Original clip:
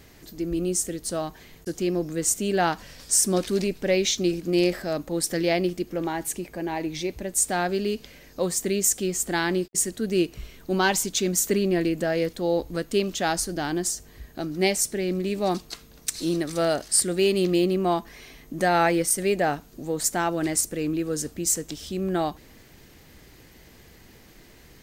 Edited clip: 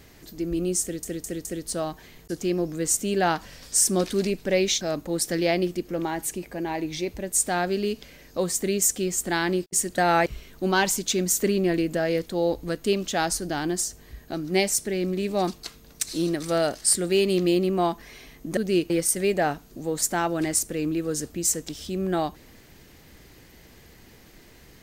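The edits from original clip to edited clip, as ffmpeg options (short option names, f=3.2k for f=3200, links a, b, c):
-filter_complex "[0:a]asplit=9[a][b][c][d][e][f][g][h][i];[a]atrim=end=1.032[j];[b]atrim=start=0.818:end=1.032[k];[c]atrim=start=0.818:end=1.032[l];[d]atrim=start=0.818:end=4.182[m];[e]atrim=start=4.828:end=10.002[n];[f]atrim=start=18.638:end=18.922[o];[g]atrim=start=10.328:end=18.642[p];[h]atrim=start=9.998:end=10.332[q];[i]atrim=start=18.918[r];[j][k]acrossfade=d=0.004:c1=hsin:c2=hsin[s];[s][l]acrossfade=d=0.004:c1=hsin:c2=hsin[t];[t][m]acrossfade=d=0.004:c1=hsin:c2=hsin[u];[u][n]acrossfade=d=0.004:c1=hsin:c2=hsin[v];[v][o]acrossfade=d=0.004:c1=hsin:c2=hsin[w];[w][p]acrossfade=d=0.004:c1=hsin:c2=hsin[x];[x][q]acrossfade=d=0.004:c1=hsin:c2=hsin[y];[y][r]acrossfade=d=0.004:c1=hsin:c2=hsin"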